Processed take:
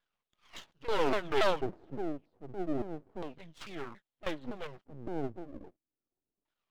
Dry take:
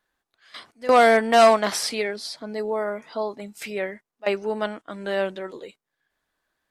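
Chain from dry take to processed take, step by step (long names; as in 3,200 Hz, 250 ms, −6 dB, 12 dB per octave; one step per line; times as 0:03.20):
pitch shifter swept by a sawtooth −10.5 semitones, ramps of 282 ms
auto-filter low-pass square 0.31 Hz 330–3,400 Hz
half-wave rectification
level −7.5 dB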